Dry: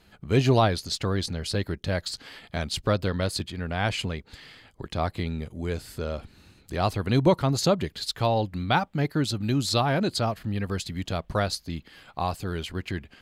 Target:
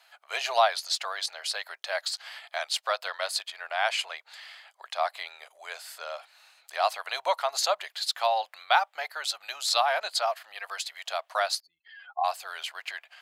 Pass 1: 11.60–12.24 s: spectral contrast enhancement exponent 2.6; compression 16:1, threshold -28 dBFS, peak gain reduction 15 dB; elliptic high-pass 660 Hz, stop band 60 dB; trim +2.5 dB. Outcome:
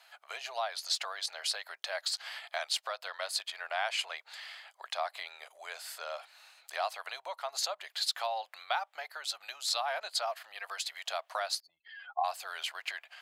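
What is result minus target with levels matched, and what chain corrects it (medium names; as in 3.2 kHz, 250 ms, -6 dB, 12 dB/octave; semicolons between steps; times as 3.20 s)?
compression: peak gain reduction +15 dB
11.60–12.24 s: spectral contrast enhancement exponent 2.6; elliptic high-pass 660 Hz, stop band 60 dB; trim +2.5 dB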